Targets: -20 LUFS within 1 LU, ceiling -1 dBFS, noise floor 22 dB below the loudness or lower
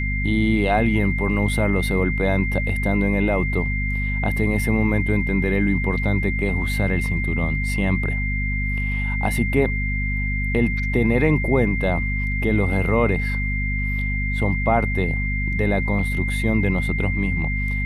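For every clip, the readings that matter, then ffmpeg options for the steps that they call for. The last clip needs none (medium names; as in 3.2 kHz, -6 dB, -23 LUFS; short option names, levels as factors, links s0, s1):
hum 50 Hz; highest harmonic 250 Hz; hum level -22 dBFS; steady tone 2.1 kHz; tone level -26 dBFS; loudness -21.5 LUFS; peak level -5.0 dBFS; loudness target -20.0 LUFS
-> -af "bandreject=f=50:t=h:w=6,bandreject=f=100:t=h:w=6,bandreject=f=150:t=h:w=6,bandreject=f=200:t=h:w=6,bandreject=f=250:t=h:w=6"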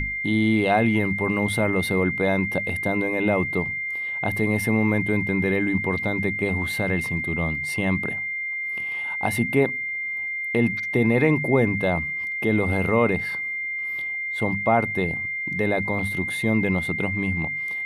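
hum not found; steady tone 2.1 kHz; tone level -26 dBFS
-> -af "bandreject=f=2100:w=30"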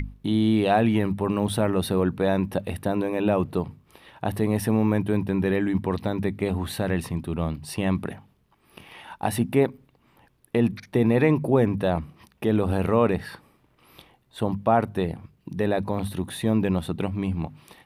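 steady tone not found; loudness -25.0 LUFS; peak level -7.0 dBFS; loudness target -20.0 LUFS
-> -af "volume=1.78"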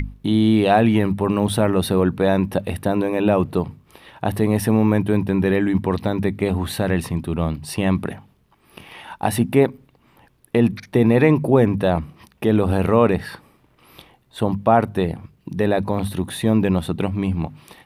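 loudness -20.0 LUFS; peak level -2.0 dBFS; noise floor -59 dBFS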